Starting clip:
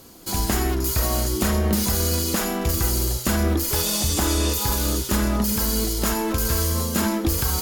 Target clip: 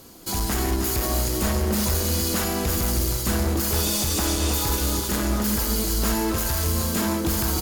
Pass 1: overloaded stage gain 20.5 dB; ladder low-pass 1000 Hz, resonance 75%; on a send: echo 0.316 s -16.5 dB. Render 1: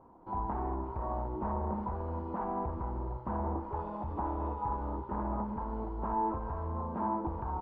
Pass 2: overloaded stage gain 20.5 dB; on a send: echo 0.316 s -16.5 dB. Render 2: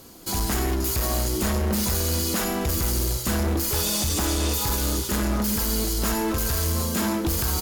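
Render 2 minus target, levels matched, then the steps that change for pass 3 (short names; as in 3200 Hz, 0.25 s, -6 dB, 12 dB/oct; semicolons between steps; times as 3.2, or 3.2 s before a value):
echo-to-direct -10.5 dB
change: echo 0.316 s -6 dB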